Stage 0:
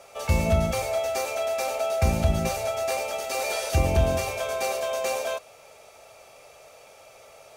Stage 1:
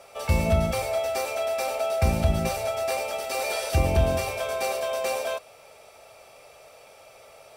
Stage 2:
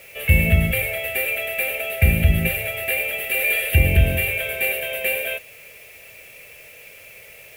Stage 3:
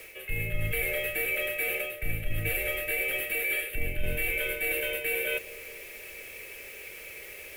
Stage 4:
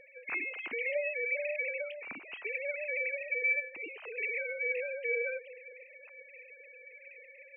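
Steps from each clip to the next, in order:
notch 6600 Hz, Q 6.7
EQ curve 160 Hz 0 dB, 250 Hz -8 dB, 480 Hz -4 dB, 1100 Hz -26 dB, 1800 Hz +6 dB, 2800 Hz +7 dB, 5500 Hz -29 dB, 12000 Hz +9 dB; bit-crush 9-bit; gain +7 dB
reverse; compressor 6:1, threshold -27 dBFS, peak gain reduction 16.5 dB; reverse; frequency shift -60 Hz; analogue delay 0.211 s, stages 1024, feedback 67%, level -16.5 dB
sine-wave speech; gain -6 dB

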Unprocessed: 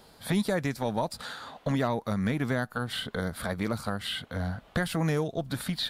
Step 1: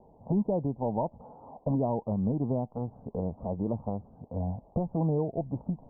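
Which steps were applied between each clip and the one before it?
steep low-pass 950 Hz 72 dB/oct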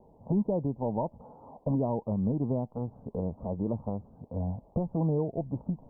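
bell 740 Hz -4 dB 0.38 oct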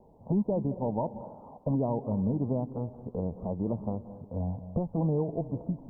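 reverb RT60 0.90 s, pre-delay 0.172 s, DRR 12.5 dB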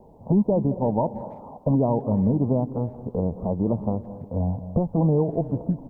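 speakerphone echo 0.33 s, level -28 dB; gain +7.5 dB

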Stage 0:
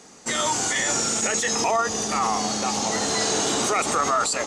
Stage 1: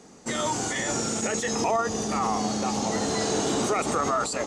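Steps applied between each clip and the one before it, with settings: tilt shelf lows +5 dB, about 720 Hz; gain -2 dB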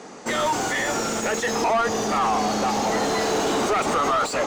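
overdrive pedal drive 22 dB, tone 1900 Hz, clips at -13.5 dBFS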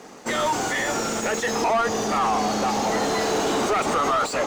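crossover distortion -50 dBFS

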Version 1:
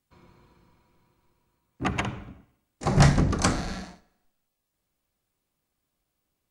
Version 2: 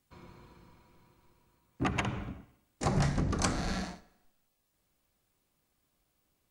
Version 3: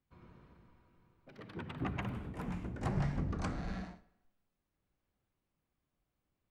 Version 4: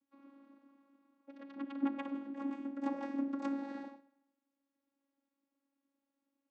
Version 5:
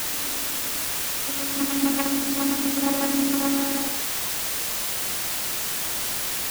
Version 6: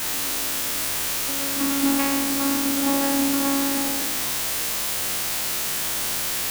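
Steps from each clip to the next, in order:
compressor 4:1, threshold -31 dBFS, peak gain reduction 15.5 dB; gain +3 dB
echoes that change speed 0.122 s, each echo +4 st, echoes 3, each echo -6 dB; tone controls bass +4 dB, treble -14 dB; gain -8.5 dB
vocoder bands 16, saw 277 Hz; gain +1.5 dB
in parallel at 0 dB: negative-ratio compressor -39 dBFS; on the sum: requantised 6-bit, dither triangular; gain +8.5 dB
spectral trails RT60 1.69 s; gain -1.5 dB

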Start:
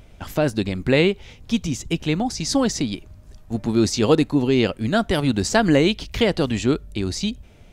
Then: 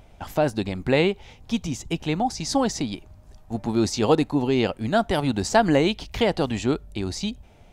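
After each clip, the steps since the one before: bell 810 Hz +8.5 dB 0.72 oct; gain -4 dB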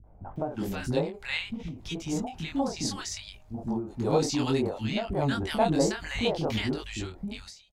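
chorus 0.61 Hz, delay 19 ms, depth 6.3 ms; three bands offset in time lows, mids, highs 40/360 ms, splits 320/1200 Hz; ending taper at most 120 dB/s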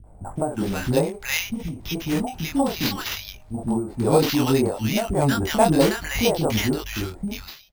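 sample-and-hold 5×; gain +7 dB

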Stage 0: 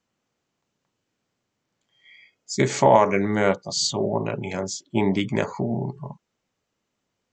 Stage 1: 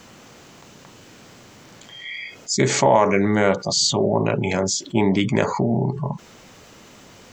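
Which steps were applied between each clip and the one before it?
fast leveller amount 50%; gain -1 dB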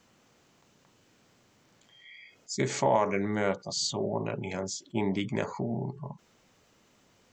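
upward expander 1.5:1, over -32 dBFS; gain -8.5 dB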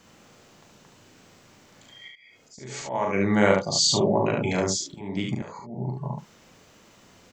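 auto swell 0.569 s; early reflections 39 ms -4.5 dB, 71 ms -3.5 dB; gain +7.5 dB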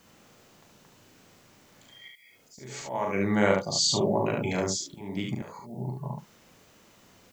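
added noise blue -65 dBFS; gain -3.5 dB

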